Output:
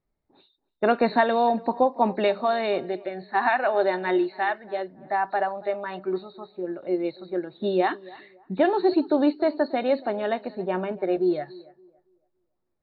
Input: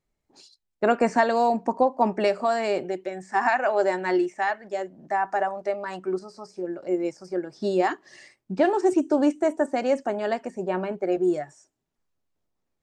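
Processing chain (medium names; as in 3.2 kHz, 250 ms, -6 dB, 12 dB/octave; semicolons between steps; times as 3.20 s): knee-point frequency compression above 3.5 kHz 4:1; tape echo 282 ms, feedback 30%, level -20 dB, low-pass 1.7 kHz; level-controlled noise filter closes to 1.7 kHz, open at -19.5 dBFS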